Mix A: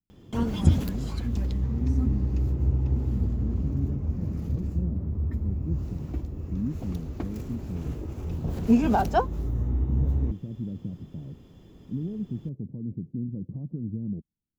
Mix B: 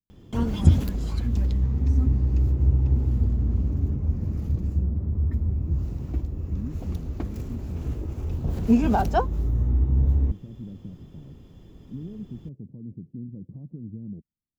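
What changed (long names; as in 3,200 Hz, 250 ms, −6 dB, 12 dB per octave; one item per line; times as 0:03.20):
speech −5.0 dB
background: add low-shelf EQ 85 Hz +7.5 dB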